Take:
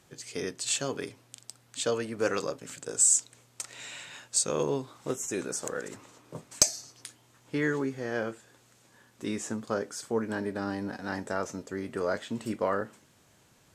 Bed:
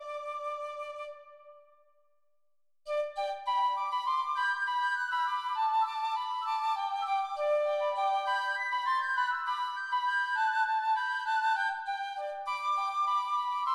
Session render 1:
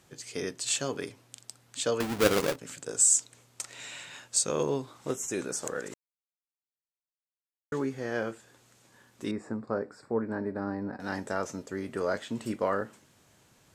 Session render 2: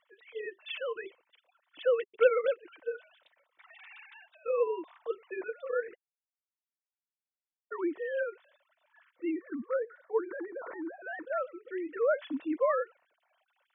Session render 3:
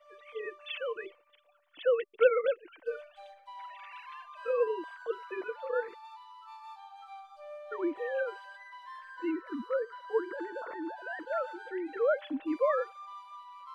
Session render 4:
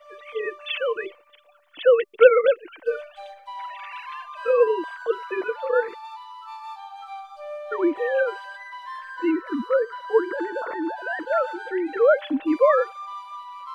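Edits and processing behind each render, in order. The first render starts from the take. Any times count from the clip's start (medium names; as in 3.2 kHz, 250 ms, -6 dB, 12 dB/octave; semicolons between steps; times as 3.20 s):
2.00–2.56 s: square wave that keeps the level; 5.94–7.72 s: mute; 9.31–11.00 s: boxcar filter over 14 samples
formants replaced by sine waves; comb of notches 410 Hz
add bed -17 dB
trim +10.5 dB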